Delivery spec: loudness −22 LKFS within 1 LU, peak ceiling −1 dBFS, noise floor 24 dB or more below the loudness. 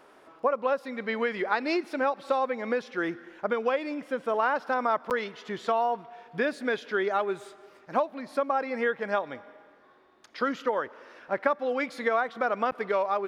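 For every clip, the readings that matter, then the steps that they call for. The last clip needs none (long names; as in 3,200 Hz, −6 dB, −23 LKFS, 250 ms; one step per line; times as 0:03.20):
number of dropouts 2; longest dropout 8.6 ms; integrated loudness −29.0 LKFS; sample peak −10.5 dBFS; target loudness −22.0 LKFS
→ repair the gap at 0:05.10/0:12.71, 8.6 ms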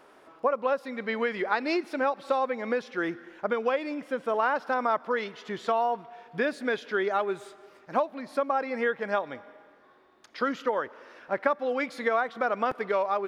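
number of dropouts 0; integrated loudness −29.0 LKFS; sample peak −10.5 dBFS; target loudness −22.0 LKFS
→ level +7 dB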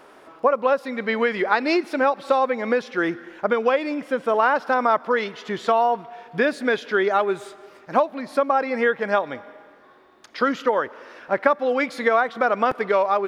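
integrated loudness −22.0 LKFS; sample peak −3.5 dBFS; background noise floor −50 dBFS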